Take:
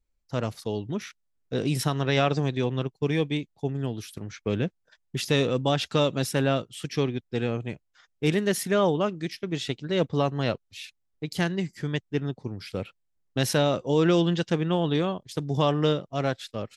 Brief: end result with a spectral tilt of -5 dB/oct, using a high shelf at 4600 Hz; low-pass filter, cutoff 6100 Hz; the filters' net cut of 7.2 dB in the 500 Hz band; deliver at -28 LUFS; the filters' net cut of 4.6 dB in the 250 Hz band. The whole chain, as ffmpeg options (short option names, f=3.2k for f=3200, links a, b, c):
-af "lowpass=6.1k,equalizer=f=250:t=o:g=-4.5,equalizer=f=500:t=o:g=-7.5,highshelf=f=4.6k:g=-5.5,volume=3dB"